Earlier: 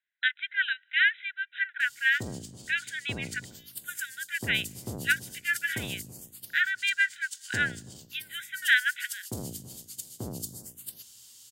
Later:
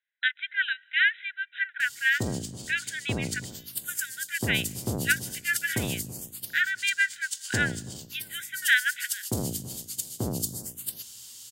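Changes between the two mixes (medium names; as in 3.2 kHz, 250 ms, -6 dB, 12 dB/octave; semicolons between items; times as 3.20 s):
speech: send +8.0 dB; background +7.0 dB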